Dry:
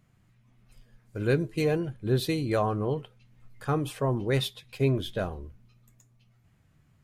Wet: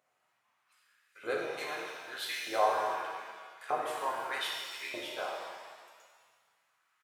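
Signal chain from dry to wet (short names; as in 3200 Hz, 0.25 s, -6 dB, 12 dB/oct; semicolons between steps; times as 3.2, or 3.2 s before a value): harmoniser -3 st -6 dB; LFO high-pass saw up 0.81 Hz 640–2100 Hz; shimmer reverb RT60 1.6 s, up +7 st, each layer -8 dB, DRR -2 dB; gain -8.5 dB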